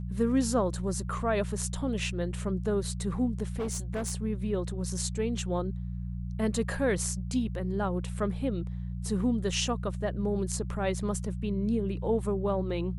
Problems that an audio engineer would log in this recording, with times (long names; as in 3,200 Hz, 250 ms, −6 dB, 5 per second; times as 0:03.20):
mains hum 60 Hz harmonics 3 −35 dBFS
0:03.46–0:04.13: clipping −28 dBFS